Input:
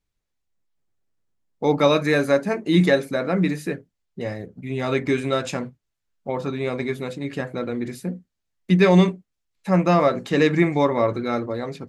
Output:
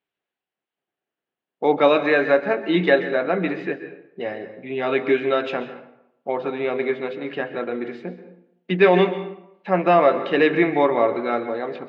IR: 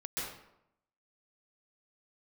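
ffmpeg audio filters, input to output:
-filter_complex "[0:a]highpass=280,equalizer=frequency=390:width_type=q:width=4:gain=4,equalizer=frequency=720:width_type=q:width=4:gain=6,equalizer=frequency=1600:width_type=q:width=4:gain=4,equalizer=frequency=2900:width_type=q:width=4:gain=6,lowpass=frequency=3500:width=0.5412,lowpass=frequency=3500:width=1.3066,asplit=2[link_01][link_02];[1:a]atrim=start_sample=2205[link_03];[link_02][link_03]afir=irnorm=-1:irlink=0,volume=-12dB[link_04];[link_01][link_04]amix=inputs=2:normalize=0,volume=-1dB"

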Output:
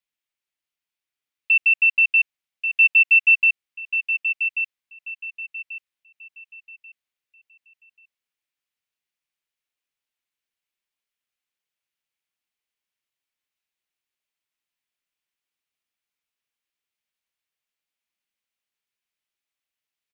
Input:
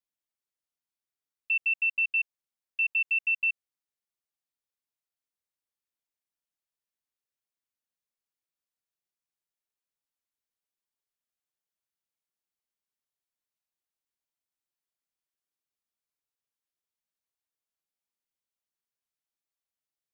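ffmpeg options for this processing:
ffmpeg -i in.wav -af "equalizer=frequency=2500:width=1:gain=10,aecho=1:1:1137|2274|3411|4548:0.422|0.127|0.038|0.0114" out.wav

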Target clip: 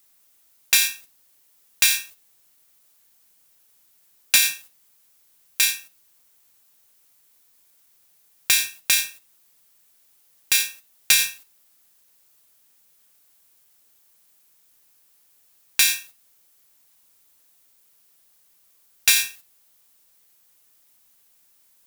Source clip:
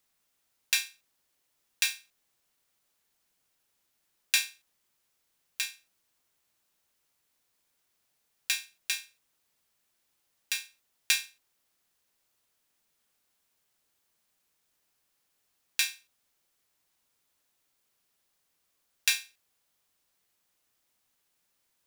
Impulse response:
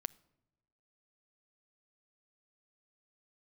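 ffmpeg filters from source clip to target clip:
-filter_complex "[0:a]agate=range=-10dB:threshold=-58dB:ratio=16:detection=peak,highshelf=frequency=7800:gain=11.5,aeval=exprs='0.596*sin(PI/2*1.58*val(0)/0.596)':channel_layout=same,asplit=2[link_01][link_02];[1:a]atrim=start_sample=2205,afade=type=out:start_time=0.22:duration=0.01,atrim=end_sample=10143,asetrate=42777,aresample=44100[link_03];[link_02][link_03]afir=irnorm=-1:irlink=0,volume=19dB[link_04];[link_01][link_04]amix=inputs=2:normalize=0,alimiter=level_in=-4dB:limit=-1dB:release=50:level=0:latency=1,volume=-4.5dB"

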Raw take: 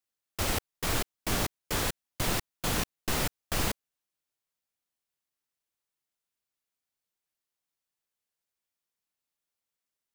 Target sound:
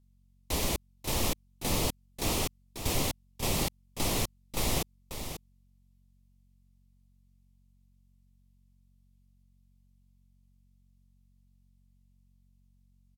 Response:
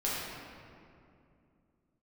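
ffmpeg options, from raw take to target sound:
-af "equalizer=frequency=2000:width_type=o:width=0.5:gain=-14.5,aecho=1:1:416:0.355,aeval=exprs='val(0)+0.000708*(sin(2*PI*60*n/s)+sin(2*PI*2*60*n/s)/2+sin(2*PI*3*60*n/s)/3+sin(2*PI*4*60*n/s)/4+sin(2*PI*5*60*n/s)/5)':channel_layout=same,asetrate=33957,aresample=44100"

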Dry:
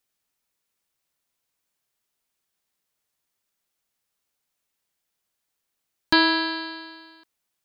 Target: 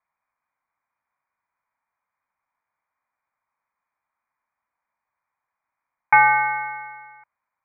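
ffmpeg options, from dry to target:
ffmpeg -i in.wav -af "lowpass=frequency=2100:width_type=q:width=0.5098,lowpass=frequency=2100:width_type=q:width=0.6013,lowpass=frequency=2100:width_type=q:width=0.9,lowpass=frequency=2100:width_type=q:width=2.563,afreqshift=-2500,equalizer=frequency=100:width_type=o:width=0.67:gain=4,equalizer=frequency=400:width_type=o:width=0.67:gain=-11,equalizer=frequency=1000:width_type=o:width=0.67:gain=11,volume=2dB" out.wav

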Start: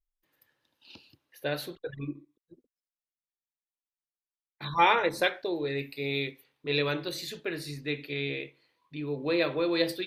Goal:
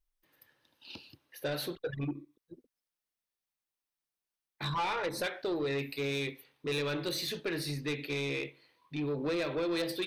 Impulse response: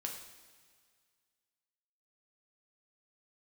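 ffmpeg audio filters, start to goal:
-af "acompressor=threshold=-30dB:ratio=4,asoftclip=type=tanh:threshold=-31.5dB,bandreject=frequency=7100:width=9,volume=4dB"

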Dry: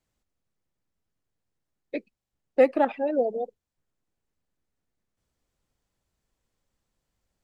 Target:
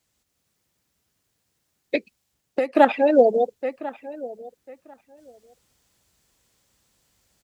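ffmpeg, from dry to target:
ffmpeg -i in.wav -filter_complex "[0:a]highshelf=frequency=2200:gain=9.5,asplit=2[link_01][link_02];[link_02]adelay=1045,lowpass=frequency=2500:poles=1,volume=-19dB,asplit=2[link_03][link_04];[link_04]adelay=1045,lowpass=frequency=2500:poles=1,volume=0.17[link_05];[link_01][link_03][link_05]amix=inputs=3:normalize=0,dynaudnorm=framelen=110:gausssize=5:maxgain=7dB,highpass=54,asettb=1/sr,asplit=3[link_06][link_07][link_08];[link_06]atrim=end=1.954[link_09];[link_07]atrim=start=1.95:end=2.75,asetpts=PTS-STARTPTS,afade=type=in:duration=0.004:curve=qsin,afade=type=out:start_time=0.796:duration=0.004:curve=qsin,acompressor=threshold=-24dB:ratio=6[link_10];[link_08]atrim=start=2.746[link_11];[link_09][link_10]acrossfade=duration=0.004:curve1=hsin:curve2=qsin[link_12];[link_12][link_11]acrossfade=duration=0.004:curve1=qsin:curve2=hsin,volume=2.5dB" out.wav

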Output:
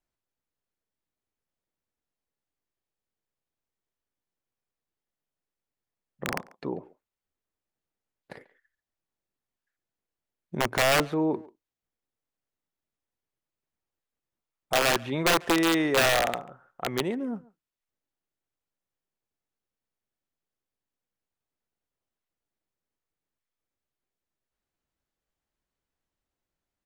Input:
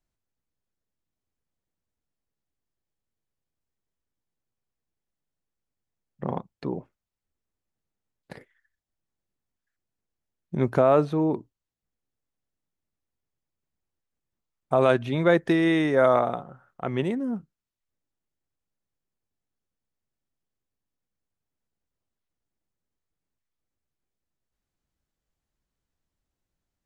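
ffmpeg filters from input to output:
ffmpeg -i in.wav -filter_complex "[0:a]aeval=exprs='(mod(5.31*val(0)+1,2)-1)/5.31':channel_layout=same,bass=frequency=250:gain=-7,treble=frequency=4000:gain=-4,asplit=2[link_01][link_02];[link_02]adelay=140,highpass=300,lowpass=3400,asoftclip=type=hard:threshold=-23dB,volume=-20dB[link_03];[link_01][link_03]amix=inputs=2:normalize=0" out.wav

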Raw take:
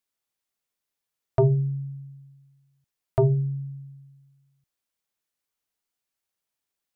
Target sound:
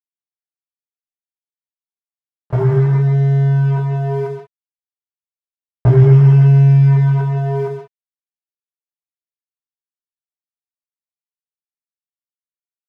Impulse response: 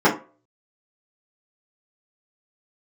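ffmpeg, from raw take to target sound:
-filter_complex "[0:a]acompressor=threshold=-33dB:ratio=10,asubboost=boost=11.5:cutoff=150,acrusher=bits=5:mix=0:aa=0.000001,dynaudnorm=framelen=470:gausssize=7:maxgain=4dB,lowpass=frequency=1300:poles=1,aecho=1:1:58|75:0.15|0.447,atempo=0.54,equalizer=frequency=61:width=1.1:gain=7[link_01];[1:a]atrim=start_sample=2205,atrim=end_sample=4410[link_02];[link_01][link_02]afir=irnorm=-1:irlink=0,aeval=exprs='sgn(val(0))*max(abs(val(0))-0.02,0)':channel_layout=same,volume=-11.5dB"

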